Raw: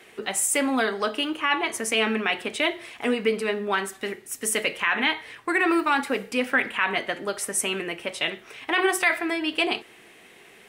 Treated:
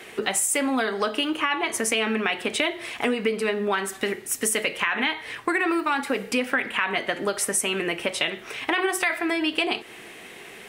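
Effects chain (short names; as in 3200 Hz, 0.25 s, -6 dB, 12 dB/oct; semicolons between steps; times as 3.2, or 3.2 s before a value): compressor 4:1, threshold -30 dBFS, peak gain reduction 12 dB; gain +8 dB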